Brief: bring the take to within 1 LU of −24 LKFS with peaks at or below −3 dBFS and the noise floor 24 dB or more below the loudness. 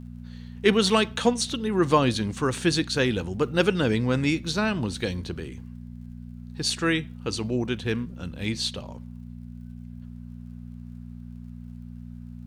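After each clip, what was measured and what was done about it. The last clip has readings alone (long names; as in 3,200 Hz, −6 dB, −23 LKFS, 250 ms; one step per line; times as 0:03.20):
crackle rate 45 per second; mains hum 60 Hz; hum harmonics up to 240 Hz; level of the hum −37 dBFS; integrated loudness −25.0 LKFS; sample peak −5.0 dBFS; target loudness −24.0 LKFS
→ click removal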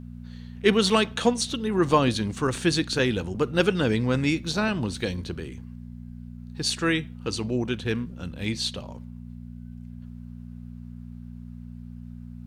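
crackle rate 0.16 per second; mains hum 60 Hz; hum harmonics up to 240 Hz; level of the hum −37 dBFS
→ hum removal 60 Hz, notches 4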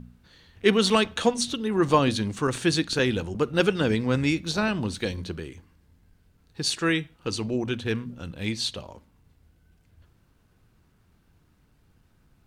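mains hum none found; integrated loudness −25.5 LKFS; sample peak −5.0 dBFS; target loudness −24.0 LKFS
→ level +1.5 dB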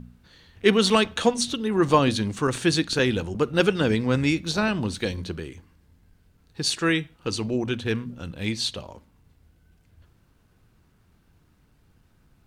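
integrated loudness −24.0 LKFS; sample peak −3.5 dBFS; background noise floor −62 dBFS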